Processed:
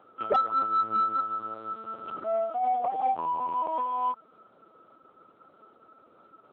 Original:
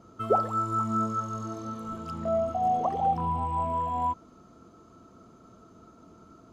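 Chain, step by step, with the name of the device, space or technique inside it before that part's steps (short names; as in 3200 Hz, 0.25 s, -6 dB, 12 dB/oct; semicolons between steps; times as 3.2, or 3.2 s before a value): talking toy (LPC vocoder at 8 kHz pitch kept; HPF 370 Hz 12 dB/oct; bell 1300 Hz +4 dB 0.32 oct; soft clip -15.5 dBFS, distortion -24 dB)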